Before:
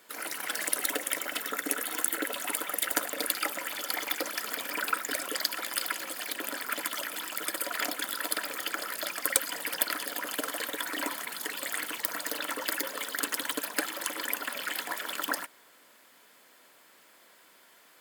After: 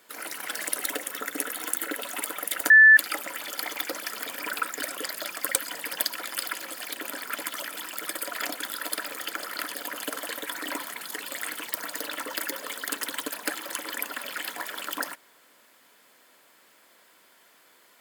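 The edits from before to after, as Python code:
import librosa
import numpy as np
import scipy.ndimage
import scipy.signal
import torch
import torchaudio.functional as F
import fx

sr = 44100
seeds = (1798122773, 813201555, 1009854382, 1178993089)

y = fx.edit(x, sr, fx.cut(start_s=1.1, length_s=0.31),
    fx.bleep(start_s=3.01, length_s=0.27, hz=1750.0, db=-9.5),
    fx.move(start_s=8.93, length_s=0.92, to_s=5.43), tone=tone)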